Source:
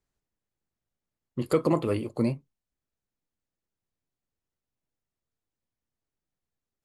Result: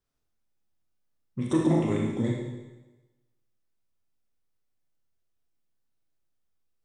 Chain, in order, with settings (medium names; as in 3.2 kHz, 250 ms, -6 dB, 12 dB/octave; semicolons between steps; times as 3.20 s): formant shift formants -4 st; Schroeder reverb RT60 1.1 s, combs from 25 ms, DRR -1.5 dB; trim -2 dB